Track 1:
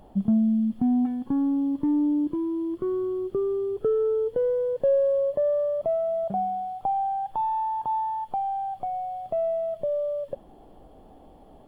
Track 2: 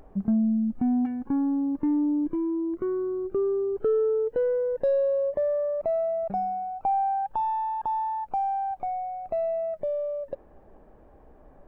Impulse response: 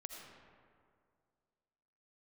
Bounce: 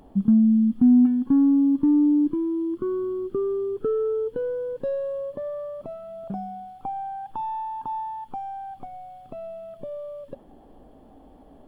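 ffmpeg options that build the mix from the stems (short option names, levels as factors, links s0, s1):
-filter_complex "[0:a]volume=0.75[s0];[1:a]volume=0.562[s1];[s0][s1]amix=inputs=2:normalize=0,equalizer=f=260:t=o:w=0.43:g=7"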